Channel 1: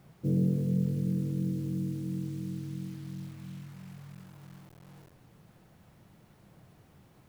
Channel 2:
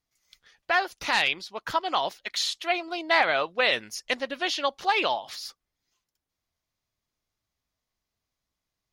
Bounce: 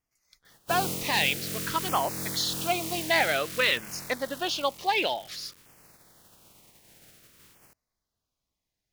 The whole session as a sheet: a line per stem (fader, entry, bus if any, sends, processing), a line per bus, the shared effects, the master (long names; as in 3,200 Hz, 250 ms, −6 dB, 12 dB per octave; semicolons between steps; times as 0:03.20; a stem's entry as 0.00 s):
−2.0 dB, 0.45 s, no send, compressing power law on the bin magnitudes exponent 0.32; speech leveller within 4 dB 0.5 s
0.0 dB, 0.00 s, no send, no processing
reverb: not used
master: auto-filter notch saw down 0.53 Hz 650–4,100 Hz